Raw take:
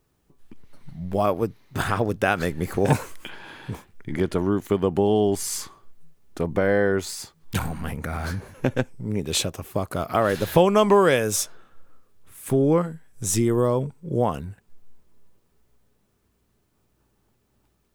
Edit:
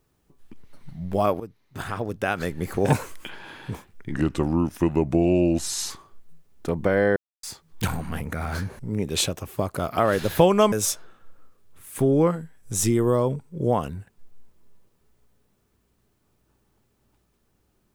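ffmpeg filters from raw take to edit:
-filter_complex "[0:a]asplit=8[s0][s1][s2][s3][s4][s5][s6][s7];[s0]atrim=end=1.4,asetpts=PTS-STARTPTS,afade=t=out:st=1.396:d=0.004:c=hsin:silence=0.211349[s8];[s1]atrim=start=1.4:end=4.144,asetpts=PTS-STARTPTS,afade=t=in:d=1.64:silence=0.211349[s9];[s2]atrim=start=4.14:end=5.62,asetpts=PTS-STARTPTS,asetrate=37044,aresample=44100[s10];[s3]atrim=start=5.616:end=6.88,asetpts=PTS-STARTPTS,afade=t=out:st=1.26:d=0.004:c=hsin[s11];[s4]atrim=start=6.88:end=7.15,asetpts=PTS-STARTPTS,volume=0[s12];[s5]atrim=start=7.15:end=8.512,asetpts=PTS-STARTPTS,afade=t=in:d=0.004:c=hsin[s13];[s6]atrim=start=8.958:end=10.892[s14];[s7]atrim=start=11.228[s15];[s8][s9]concat=n=2:v=0:a=1[s16];[s16][s10]acrossfade=d=0.004:c1=hsin:c2=hsin[s17];[s11][s12][s13]concat=n=3:v=0:a=1[s18];[s17][s18]acrossfade=d=0.004:c1=hsin:c2=hsin[s19];[s19][s14]acrossfade=d=0.004:c1=hsin:c2=hsin[s20];[s20][s15]acrossfade=d=0.004:c1=hsin:c2=hsin"

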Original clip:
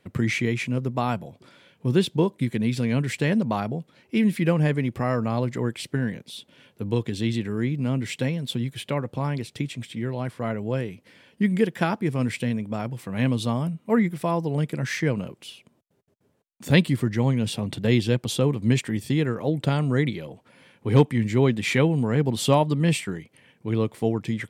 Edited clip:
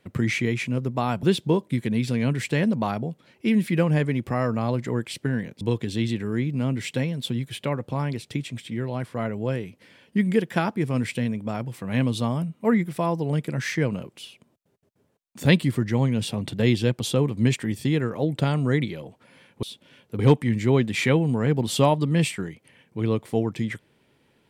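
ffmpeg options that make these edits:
-filter_complex "[0:a]asplit=5[s0][s1][s2][s3][s4];[s0]atrim=end=1.232[s5];[s1]atrim=start=1.918:end=6.302[s6];[s2]atrim=start=6.858:end=20.882[s7];[s3]atrim=start=6.298:end=6.862[s8];[s4]atrim=start=20.878[s9];[s5][s6]acrossfade=d=0.004:c1=hsin:c2=hsin[s10];[s10][s7]acrossfade=d=0.004:c1=hsin:c2=hsin[s11];[s11][s8]acrossfade=d=0.004:c1=hsin:c2=hsin[s12];[s12][s9]acrossfade=d=0.004:c1=hsin:c2=hsin"

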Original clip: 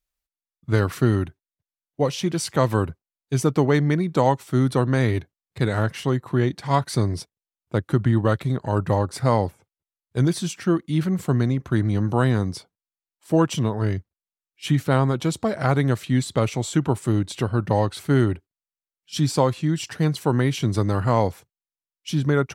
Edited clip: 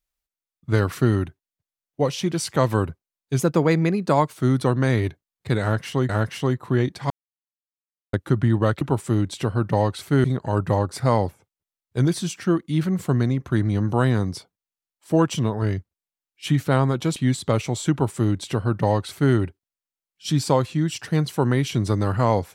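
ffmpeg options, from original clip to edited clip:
-filter_complex "[0:a]asplit=9[s0][s1][s2][s3][s4][s5][s6][s7][s8];[s0]atrim=end=3.394[s9];[s1]atrim=start=3.39:end=4.48,asetpts=PTS-STARTPTS,asetrate=48951,aresample=44100,atrim=end_sample=43305,asetpts=PTS-STARTPTS[s10];[s2]atrim=start=4.476:end=6.202[s11];[s3]atrim=start=5.718:end=6.73,asetpts=PTS-STARTPTS,afade=t=out:st=1.008:d=0.004:c=hsin[s12];[s4]atrim=start=6.73:end=7.76,asetpts=PTS-STARTPTS,volume=0[s13];[s5]atrim=start=7.76:end=8.442,asetpts=PTS-STARTPTS,afade=t=in:d=0.004:c=hsin[s14];[s6]atrim=start=16.788:end=18.222[s15];[s7]atrim=start=8.438:end=15.362[s16];[s8]atrim=start=16.038[s17];[s9][s10]acrossfade=d=0.004:c1=hsin:c2=hsin[s18];[s18][s11]acrossfade=d=0.004:c1=hsin:c2=hsin[s19];[s12][s13][s14]concat=n=3:v=0:a=1[s20];[s19][s20]acrossfade=d=0.004:c1=hsin:c2=hsin[s21];[s21][s15]acrossfade=d=0.004:c1=hsin:c2=hsin[s22];[s22][s16]acrossfade=d=0.004:c1=hsin:c2=hsin[s23];[s23][s17]acrossfade=d=0.004:c1=hsin:c2=hsin"

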